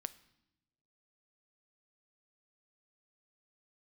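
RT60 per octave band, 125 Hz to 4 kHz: 1.4, 1.2, 1.0, 0.80, 0.80, 0.80 seconds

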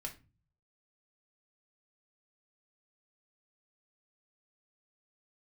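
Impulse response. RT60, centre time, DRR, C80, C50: 0.30 s, 12 ms, 0.5 dB, 20.0 dB, 13.0 dB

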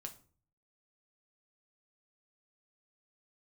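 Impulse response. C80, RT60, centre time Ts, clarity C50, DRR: 19.5 dB, 0.45 s, 8 ms, 14.0 dB, 3.5 dB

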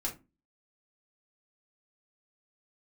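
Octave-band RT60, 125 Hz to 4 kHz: 0.40, 0.40, 0.30, 0.25, 0.20, 0.15 seconds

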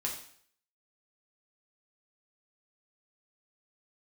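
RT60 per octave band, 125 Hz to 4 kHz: 0.60, 0.55, 0.60, 0.60, 0.60, 0.60 seconds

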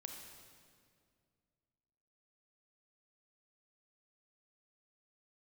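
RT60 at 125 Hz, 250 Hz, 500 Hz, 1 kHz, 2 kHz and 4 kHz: 2.7, 2.6, 2.3, 2.0, 1.8, 1.7 seconds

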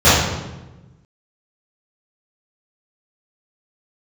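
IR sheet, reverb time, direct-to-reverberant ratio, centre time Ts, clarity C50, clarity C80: 1.1 s, −15.0 dB, 78 ms, −1.5 dB, 3.0 dB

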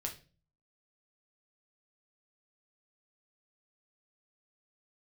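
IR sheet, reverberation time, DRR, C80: 0.35 s, 1.0 dB, 17.5 dB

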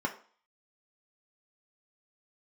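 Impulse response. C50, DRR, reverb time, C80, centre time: 12.5 dB, 0.5 dB, 0.45 s, 16.5 dB, 12 ms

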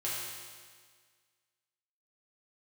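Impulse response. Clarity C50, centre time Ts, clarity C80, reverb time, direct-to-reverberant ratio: −1.5 dB, 112 ms, 0.5 dB, 1.7 s, −8.5 dB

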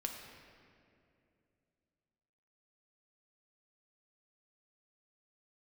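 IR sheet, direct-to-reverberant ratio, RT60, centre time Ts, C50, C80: 1.5 dB, 2.6 s, 63 ms, 4.0 dB, 5.0 dB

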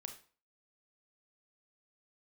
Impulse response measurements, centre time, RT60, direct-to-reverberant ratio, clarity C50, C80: 13 ms, 0.40 s, 5.0 dB, 9.5 dB, 14.5 dB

